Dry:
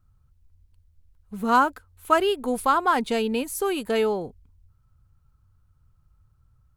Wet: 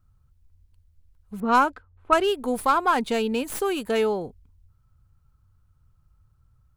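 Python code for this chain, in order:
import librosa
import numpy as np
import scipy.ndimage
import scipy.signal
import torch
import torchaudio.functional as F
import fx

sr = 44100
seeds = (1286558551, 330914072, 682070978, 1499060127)

y = fx.tracing_dist(x, sr, depth_ms=0.042)
y = fx.env_lowpass(y, sr, base_hz=910.0, full_db=-13.5, at=(1.4, 2.24))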